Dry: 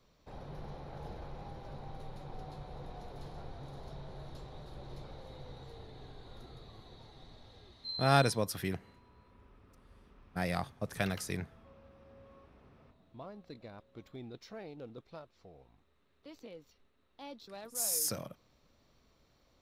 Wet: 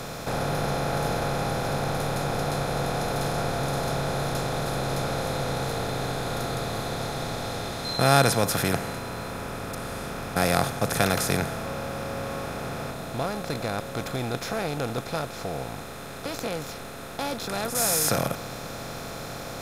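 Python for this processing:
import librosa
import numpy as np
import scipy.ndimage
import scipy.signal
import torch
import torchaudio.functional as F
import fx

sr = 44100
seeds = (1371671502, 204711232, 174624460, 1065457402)

y = fx.bin_compress(x, sr, power=0.4)
y = y * 10.0 ** (5.0 / 20.0)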